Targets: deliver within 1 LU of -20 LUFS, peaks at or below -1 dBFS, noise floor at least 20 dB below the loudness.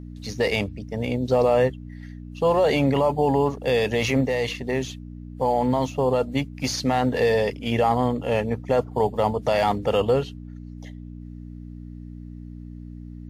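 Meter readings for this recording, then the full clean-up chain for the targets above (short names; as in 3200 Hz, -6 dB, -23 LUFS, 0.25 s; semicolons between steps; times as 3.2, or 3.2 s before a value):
hum 60 Hz; harmonics up to 300 Hz; hum level -36 dBFS; loudness -23.0 LUFS; peak -9.5 dBFS; loudness target -20.0 LUFS
-> de-hum 60 Hz, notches 5; gain +3 dB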